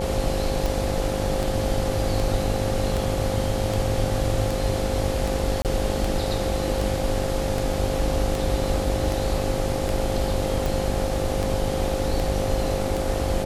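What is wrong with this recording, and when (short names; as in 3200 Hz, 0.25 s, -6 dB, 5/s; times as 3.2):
buzz 50 Hz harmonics 17 -29 dBFS
tick 78 rpm
tone 530 Hz -28 dBFS
5.62–5.65 gap 28 ms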